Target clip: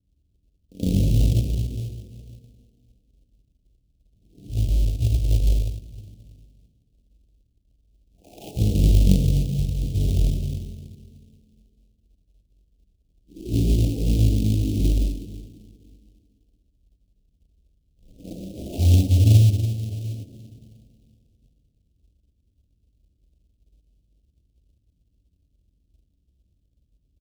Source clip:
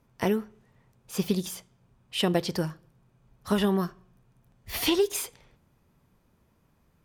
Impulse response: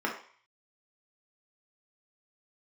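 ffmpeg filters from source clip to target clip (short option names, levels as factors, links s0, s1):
-filter_complex "[0:a]asetrate=46722,aresample=44100,atempo=0.943874,adynamicsmooth=sensitivity=4.5:basefreq=590,lowshelf=f=71:g=-8.5,bandreject=f=60:t=h:w=6,bandreject=f=120:t=h:w=6,bandreject=f=180:t=h:w=6,bandreject=f=240:t=h:w=6,bandreject=f=300:t=h:w=6,bandreject=f=360:t=h:w=6,asplit=2[s0][s1];[s1]adelay=80,lowpass=f=1100:p=1,volume=0.178,asplit=2[s2][s3];[s3]adelay=80,lowpass=f=1100:p=1,volume=0.18[s4];[s0][s2][s4]amix=inputs=3:normalize=0[s5];[1:a]atrim=start_sample=2205,asetrate=37044,aresample=44100[s6];[s5][s6]afir=irnorm=-1:irlink=0,asetrate=11422,aresample=44100,acrusher=bits=3:mode=log:mix=0:aa=0.000001,asuperstop=centerf=1300:order=8:qfactor=0.59,equalizer=f=510:w=3:g=-3.5,volume=0.668"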